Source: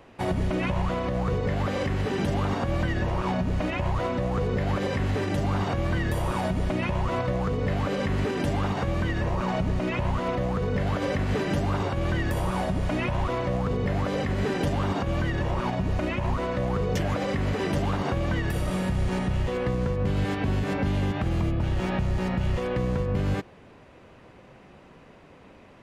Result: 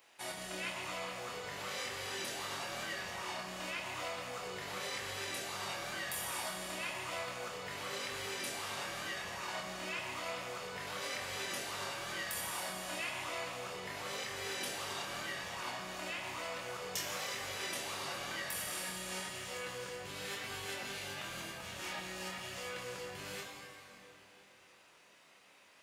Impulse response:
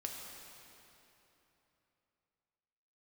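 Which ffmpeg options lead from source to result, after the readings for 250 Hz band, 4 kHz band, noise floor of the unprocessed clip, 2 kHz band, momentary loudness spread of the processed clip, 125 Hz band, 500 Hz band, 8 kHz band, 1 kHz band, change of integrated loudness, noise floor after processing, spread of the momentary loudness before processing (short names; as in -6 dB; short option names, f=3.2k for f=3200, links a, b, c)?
-23.5 dB, -0.5 dB, -51 dBFS, -5.5 dB, 4 LU, -28.0 dB, -15.5 dB, +5.0 dB, -11.0 dB, -12.5 dB, -62 dBFS, 1 LU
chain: -filter_complex "[0:a]aderivative[a];[1:a]atrim=start_sample=2205[b];[a][b]afir=irnorm=-1:irlink=0,flanger=delay=22.5:depth=4.7:speed=0.97,volume=9.5dB"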